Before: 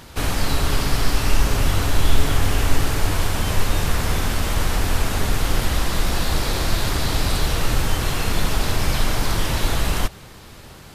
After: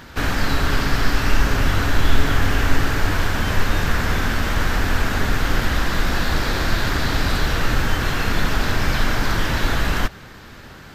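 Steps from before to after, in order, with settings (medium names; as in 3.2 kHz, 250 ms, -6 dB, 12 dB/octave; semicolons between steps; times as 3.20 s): fifteen-band graphic EQ 250 Hz +4 dB, 1.6 kHz +8 dB, 10 kHz -11 dB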